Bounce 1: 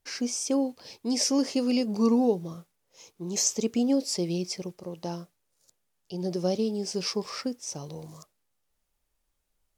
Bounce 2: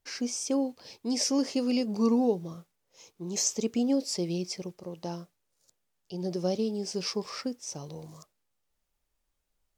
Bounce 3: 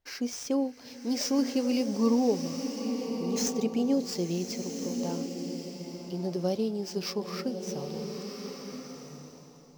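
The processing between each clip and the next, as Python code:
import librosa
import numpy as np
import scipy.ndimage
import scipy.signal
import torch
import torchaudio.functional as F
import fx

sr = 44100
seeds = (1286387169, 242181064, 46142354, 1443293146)

y1 = fx.peak_eq(x, sr, hz=11000.0, db=-3.5, octaves=0.57)
y1 = y1 * 10.0 ** (-2.0 / 20.0)
y2 = scipy.ndimage.median_filter(y1, 5, mode='constant')
y2 = fx.rev_bloom(y2, sr, seeds[0], attack_ms=1420, drr_db=5.0)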